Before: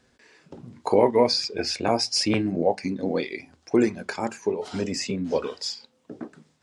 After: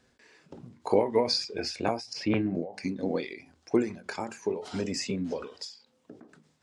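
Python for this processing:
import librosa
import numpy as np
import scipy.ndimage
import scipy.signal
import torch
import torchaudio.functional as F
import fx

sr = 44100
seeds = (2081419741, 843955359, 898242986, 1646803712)

y = fx.lowpass(x, sr, hz=2600.0, slope=12, at=(2.13, 2.55))
y = fx.end_taper(y, sr, db_per_s=130.0)
y = F.gain(torch.from_numpy(y), -3.0).numpy()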